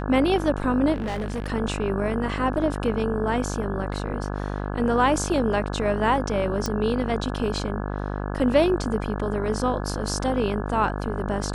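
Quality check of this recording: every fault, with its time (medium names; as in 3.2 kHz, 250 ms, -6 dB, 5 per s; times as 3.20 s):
buzz 50 Hz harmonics 34 -29 dBFS
0.93–1.52 s: clipped -24.5 dBFS
6.66 s: pop -13 dBFS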